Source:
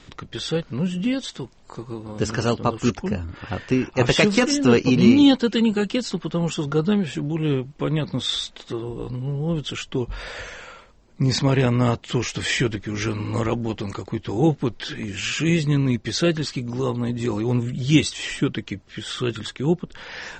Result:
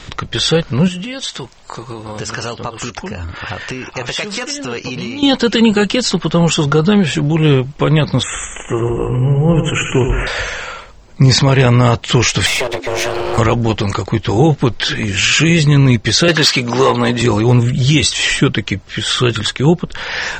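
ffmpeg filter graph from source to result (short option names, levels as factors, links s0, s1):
-filter_complex "[0:a]asettb=1/sr,asplit=3[s0][s1][s2];[s0]atrim=end=0.884[s3];[s1]atrim=start=0.88:end=5.23,asetpts=PTS-STARTPTS,afade=t=in:d=0.004:c=qsin,afade=t=out:st=4.346:d=0.004:c=qsin,lowshelf=f=400:g=-7.5,acompressor=threshold=0.0224:ratio=5:attack=3.2:release=140:knee=1:detection=peak[s4];[s2]atrim=start=5.226[s5];[s3][s4]acrossfade=d=0.004:c1=hsin:c2=qsin[s6];[s6][s5]acrossfade=d=0.004:c1=qsin:c2=hsin,asettb=1/sr,asplit=3[s7][s8][s9];[s7]atrim=end=8.234[s10];[s8]atrim=start=8.23:end=10.27,asetpts=PTS-STARTPTS,afade=t=in:d=0.004:c=qsin,afade=t=out:st=2.036:d=0.004:c=qsin,asuperstop=centerf=4400:order=12:qfactor=1.3,aecho=1:1:87|174|261|348|435|522|609:0.447|0.246|0.135|0.0743|0.0409|0.0225|0.0124,atrim=end_sample=89964[s11];[s9]atrim=start=10.266[s12];[s10][s11]acrossfade=d=0.004:c1=hsin:c2=qsin[s13];[s13][s12]acrossfade=d=0.004:c1=qsin:c2=hsin,asettb=1/sr,asplit=3[s14][s15][s16];[s14]atrim=end=12.464[s17];[s15]atrim=start=12.46:end=13.38,asetpts=PTS-STARTPTS,afade=t=in:d=0.004:c=qsin,afade=t=out:st=0.916:d=0.004:c=qsin,acompressor=threshold=0.0631:ratio=10:attack=3.2:release=140:knee=1:detection=peak,afreqshift=250,aeval=exprs='clip(val(0),-1,0.0178)':c=same[s18];[s16]atrim=start=13.376[s19];[s17][s18]acrossfade=d=0.004:c1=hsin:c2=qsin[s20];[s20][s19]acrossfade=d=0.004:c1=qsin:c2=hsin,asettb=1/sr,asplit=3[s21][s22][s23];[s21]atrim=end=16.284[s24];[s22]atrim=start=16.28:end=17.22,asetpts=PTS-STARTPTS,afade=t=in:d=0.004:c=qsin,afade=t=out:st=0.936:d=0.004:c=qsin,highpass=120,asplit=2[s25][s26];[s26]highpass=f=720:p=1,volume=5.62,asoftclip=type=tanh:threshold=0.316[s27];[s25][s27]amix=inputs=2:normalize=0,lowpass=f=4200:p=1,volume=0.501[s28];[s23]atrim=start=17.216[s29];[s24][s28]acrossfade=d=0.004:c1=hsin:c2=qsin[s30];[s30][s29]acrossfade=d=0.004:c1=qsin:c2=hsin,equalizer=f=270:t=o:w=1.4:g=-6.5,alimiter=level_in=6.31:limit=0.891:release=50:level=0:latency=1,volume=0.891"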